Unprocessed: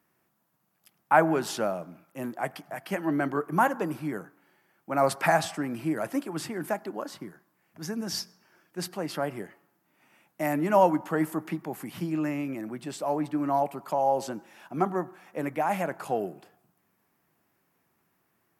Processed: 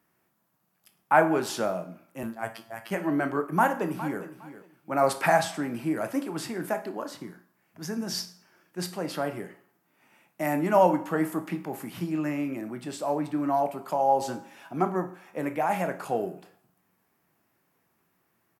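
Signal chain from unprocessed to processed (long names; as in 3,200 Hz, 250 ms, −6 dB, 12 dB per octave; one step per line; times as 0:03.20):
0:02.23–0:02.91: phases set to zero 113 Hz
0:14.19–0:14.73: comb filter 7.3 ms, depth 50%
convolution reverb RT60 0.45 s, pre-delay 17 ms, DRR 8 dB
0:03.45–0:04.21: delay throw 410 ms, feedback 20%, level −14 dB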